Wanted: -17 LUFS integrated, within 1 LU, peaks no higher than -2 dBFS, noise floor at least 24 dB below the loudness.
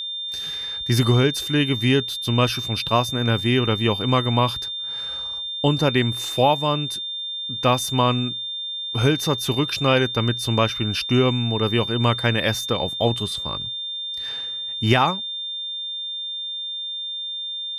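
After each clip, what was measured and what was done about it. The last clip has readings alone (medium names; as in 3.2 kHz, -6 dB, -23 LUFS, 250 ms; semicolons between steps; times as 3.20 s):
steady tone 3.6 kHz; tone level -27 dBFS; loudness -22.0 LUFS; peak level -3.5 dBFS; loudness target -17.0 LUFS
-> band-stop 3.6 kHz, Q 30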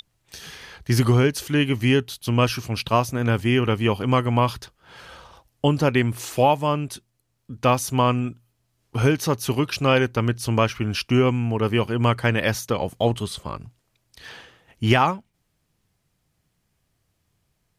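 steady tone not found; loudness -22.0 LUFS; peak level -4.0 dBFS; loudness target -17.0 LUFS
-> trim +5 dB; peak limiter -2 dBFS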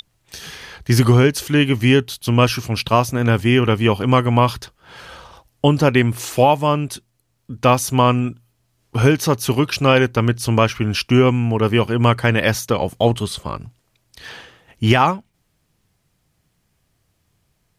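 loudness -17.0 LUFS; peak level -2.0 dBFS; noise floor -67 dBFS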